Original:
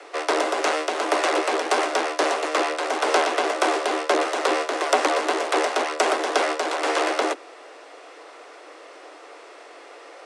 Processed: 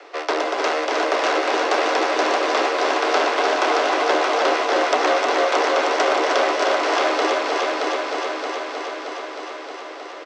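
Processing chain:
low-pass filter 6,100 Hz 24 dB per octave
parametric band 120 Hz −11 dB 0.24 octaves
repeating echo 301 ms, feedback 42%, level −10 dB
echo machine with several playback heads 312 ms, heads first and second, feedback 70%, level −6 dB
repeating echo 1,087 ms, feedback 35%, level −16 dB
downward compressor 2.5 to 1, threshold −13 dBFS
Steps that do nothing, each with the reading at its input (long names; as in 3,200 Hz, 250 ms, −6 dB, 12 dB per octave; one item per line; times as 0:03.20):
parametric band 120 Hz: nothing at its input below 230 Hz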